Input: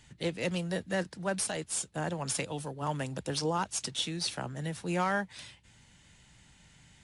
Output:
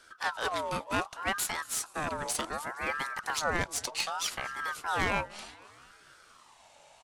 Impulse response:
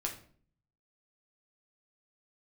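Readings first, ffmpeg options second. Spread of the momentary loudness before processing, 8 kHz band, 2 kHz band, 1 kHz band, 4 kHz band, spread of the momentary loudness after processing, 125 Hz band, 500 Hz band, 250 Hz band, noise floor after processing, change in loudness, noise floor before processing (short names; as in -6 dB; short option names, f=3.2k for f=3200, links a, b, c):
6 LU, +0.5 dB, +6.0 dB, +3.5 dB, 0.0 dB, 5 LU, -8.0 dB, -2.5 dB, -6.0 dB, -59 dBFS, +1.0 dB, -61 dBFS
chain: -filter_complex "[0:a]asplit=6[a][b][c][d][e][f];[b]adelay=233,afreqshift=-69,volume=-22dB[g];[c]adelay=466,afreqshift=-138,volume=-26.4dB[h];[d]adelay=699,afreqshift=-207,volume=-30.9dB[i];[e]adelay=932,afreqshift=-276,volume=-35.3dB[j];[f]adelay=1165,afreqshift=-345,volume=-39.7dB[k];[a][g][h][i][j][k]amix=inputs=6:normalize=0,aeval=exprs='0.106*(cos(1*acos(clip(val(0)/0.106,-1,1)))-cos(1*PI/2))+0.0211*(cos(2*acos(clip(val(0)/0.106,-1,1)))-cos(2*PI/2))+0.0188*(cos(3*acos(clip(val(0)/0.106,-1,1)))-cos(3*PI/2))+0.0075*(cos(5*acos(clip(val(0)/0.106,-1,1)))-cos(5*PI/2))':c=same,aeval=exprs='val(0)*sin(2*PI*1100*n/s+1100*0.35/0.66*sin(2*PI*0.66*n/s))':c=same,volume=5.5dB"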